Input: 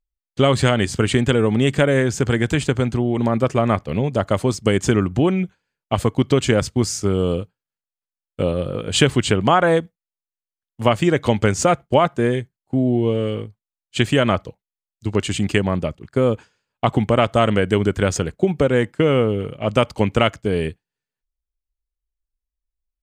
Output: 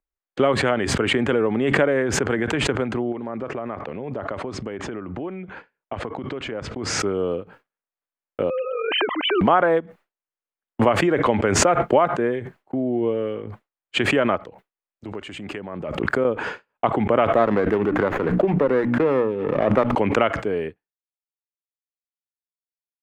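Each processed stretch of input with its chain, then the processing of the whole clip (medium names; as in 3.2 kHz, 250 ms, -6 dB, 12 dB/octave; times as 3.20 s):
3.12–7.00 s: compression 12:1, threshold -21 dBFS + distance through air 77 m
8.50–9.41 s: formants replaced by sine waves + high-pass 810 Hz 6 dB/octave + three bands compressed up and down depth 70%
14.43–16.25 s: treble shelf 8.7 kHz +5.5 dB + compression 2:1, threshold -32 dBFS
17.33–19.95 s: high-pass 98 Hz + hum notches 60/120/180/240/300 Hz + sliding maximum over 9 samples
whole clip: expander -41 dBFS; three-band isolator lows -15 dB, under 250 Hz, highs -23 dB, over 2.4 kHz; swell ahead of each attack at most 27 dB/s; trim -1.5 dB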